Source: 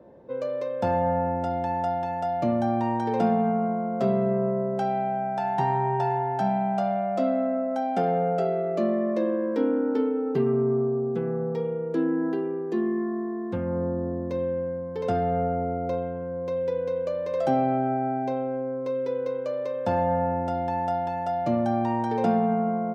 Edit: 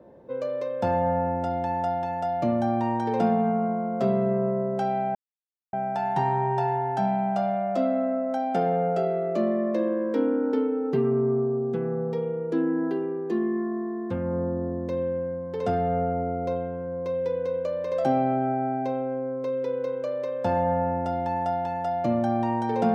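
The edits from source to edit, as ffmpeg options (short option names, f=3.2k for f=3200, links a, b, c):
-filter_complex "[0:a]asplit=2[a][b];[a]atrim=end=5.15,asetpts=PTS-STARTPTS,afade=t=out:st=5.146:d=0.004:c=hsin,apad=pad_dur=0.58[c];[b]atrim=start=5.15,asetpts=PTS-STARTPTS,afade=t=in:d=0.004:c=hsin[d];[c][d]concat=n=2:v=0:a=1"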